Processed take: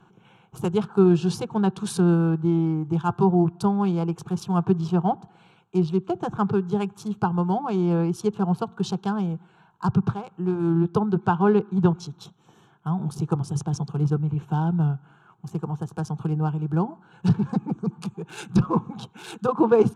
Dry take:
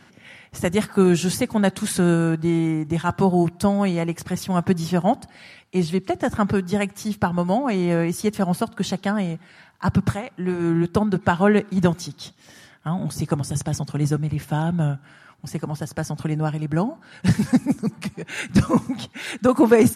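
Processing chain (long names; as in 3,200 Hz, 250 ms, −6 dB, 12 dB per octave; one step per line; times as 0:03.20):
adaptive Wiener filter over 9 samples
treble cut that deepens with the level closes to 2,900 Hz, closed at −14.5 dBFS
phaser with its sweep stopped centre 390 Hz, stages 8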